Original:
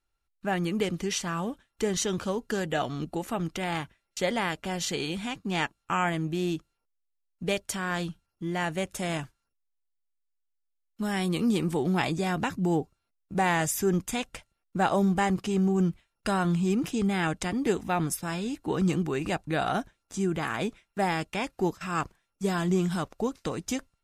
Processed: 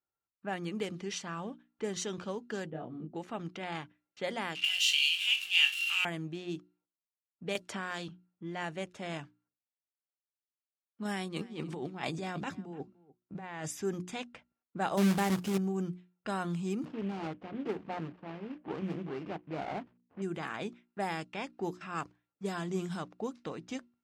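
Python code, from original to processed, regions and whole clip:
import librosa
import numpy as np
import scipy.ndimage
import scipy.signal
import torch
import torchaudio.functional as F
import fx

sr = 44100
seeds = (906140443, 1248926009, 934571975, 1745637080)

y = fx.chain(x, sr, fx.bandpass_q(hz=190.0, q=0.78),
    fx.doubler(ms=25.0, db=-2.5), at=(2.7, 3.15))
y = fx.chain(y, sr, fx.zero_step(step_db=-30.0),
    fx.highpass_res(hz=2800.0, q=13.0),
    fx.room_flutter(wall_m=3.8, rt60_s=0.21), at=(4.55, 6.05))
y = fx.chain(y, sr, fx.block_float(bits=7),
    fx.low_shelf(hz=82.0, db=-10.0),
    fx.band_squash(depth_pct=100), at=(7.55, 8.08))
y = fx.chain(y, sr, fx.over_compress(threshold_db=-29.0, ratio=-0.5),
    fx.echo_single(ms=295, db=-20.5), at=(11.05, 13.68))
y = fx.chain(y, sr, fx.low_shelf(hz=300.0, db=8.5),
    fx.quant_companded(bits=4), at=(14.97, 15.58))
y = fx.chain(y, sr, fx.cvsd(bps=16000),
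    fx.hum_notches(base_hz=60, count=5),
    fx.running_max(window=17), at=(16.85, 20.22))
y = scipy.signal.sosfilt(scipy.signal.butter(2, 130.0, 'highpass', fs=sr, output='sos'), y)
y = fx.hum_notches(y, sr, base_hz=60, count=6)
y = fx.env_lowpass(y, sr, base_hz=1500.0, full_db=-22.5)
y = F.gain(torch.from_numpy(y), -7.5).numpy()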